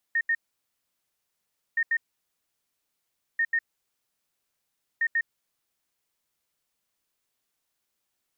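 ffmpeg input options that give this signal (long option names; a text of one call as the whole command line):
ffmpeg -f lavfi -i "aevalsrc='0.0891*sin(2*PI*1840*t)*clip(min(mod(mod(t,1.62),0.14),0.06-mod(mod(t,1.62),0.14))/0.005,0,1)*lt(mod(t,1.62),0.28)':duration=6.48:sample_rate=44100" out.wav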